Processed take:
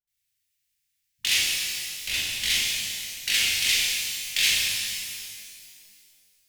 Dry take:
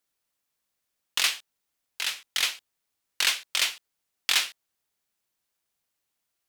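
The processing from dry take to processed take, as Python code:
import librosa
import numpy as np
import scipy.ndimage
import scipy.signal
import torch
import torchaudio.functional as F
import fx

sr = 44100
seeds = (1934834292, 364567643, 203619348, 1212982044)

p1 = scipy.signal.sosfilt(scipy.signal.cheby1(3, 1.0, [130.0, 2000.0], 'bandstop', fs=sr, output='sos'), x)
p2 = fx.peak_eq(p1, sr, hz=640.0, db=-4.5, octaves=0.25)
p3 = fx.dispersion(p2, sr, late='highs', ms=75.0, hz=360.0)
p4 = fx.schmitt(p3, sr, flips_db=-28.0)
p5 = p3 + F.gain(torch.from_numpy(p4), -11.0).numpy()
p6 = fx.doubler(p5, sr, ms=37.0, db=-5)
p7 = fx.rev_shimmer(p6, sr, seeds[0], rt60_s=2.2, semitones=12, shimmer_db=-8, drr_db=-4.0)
y = F.gain(torch.from_numpy(p7), -2.0).numpy()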